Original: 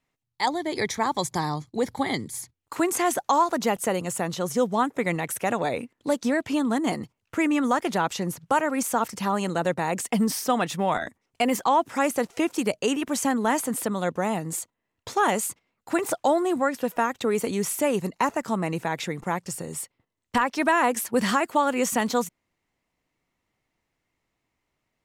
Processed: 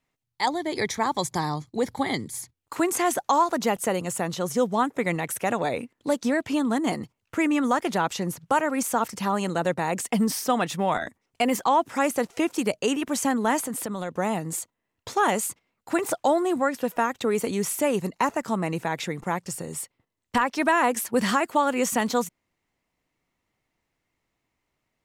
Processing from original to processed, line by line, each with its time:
13.60–14.13 s: compression 4:1, threshold -27 dBFS

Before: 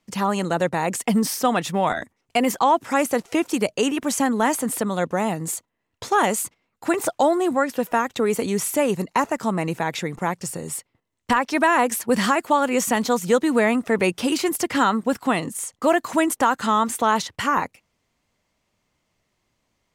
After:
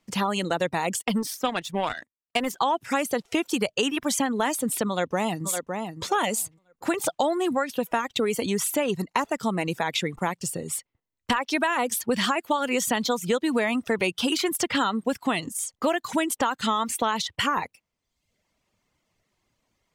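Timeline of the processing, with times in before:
0.99–2.57 s: power-law waveshaper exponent 1.4
4.88–5.46 s: echo throw 560 ms, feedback 25%, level -7.5 dB
whole clip: reverb removal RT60 0.75 s; dynamic bell 3.3 kHz, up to +8 dB, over -44 dBFS, Q 1.6; compression 4:1, threshold -21 dBFS

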